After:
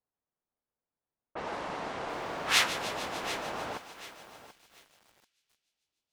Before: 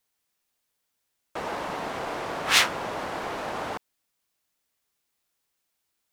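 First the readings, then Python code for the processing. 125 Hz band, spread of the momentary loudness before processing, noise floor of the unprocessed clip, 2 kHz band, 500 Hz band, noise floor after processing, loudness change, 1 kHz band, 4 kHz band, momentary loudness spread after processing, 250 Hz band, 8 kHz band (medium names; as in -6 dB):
-5.0 dB, 15 LU, -79 dBFS, -4.5 dB, -5.0 dB, under -85 dBFS, -4.5 dB, -4.5 dB, -4.5 dB, 21 LU, -5.0 dB, -4.5 dB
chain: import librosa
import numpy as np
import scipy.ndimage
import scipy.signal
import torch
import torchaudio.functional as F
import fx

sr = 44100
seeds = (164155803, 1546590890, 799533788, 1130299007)

p1 = fx.env_lowpass(x, sr, base_hz=940.0, full_db=-26.0)
p2 = p1 + fx.echo_thinned(p1, sr, ms=148, feedback_pct=79, hz=940.0, wet_db=-12.5, dry=0)
p3 = fx.echo_crushed(p2, sr, ms=736, feedback_pct=35, bits=7, wet_db=-13.5)
y = p3 * librosa.db_to_amplitude(-5.0)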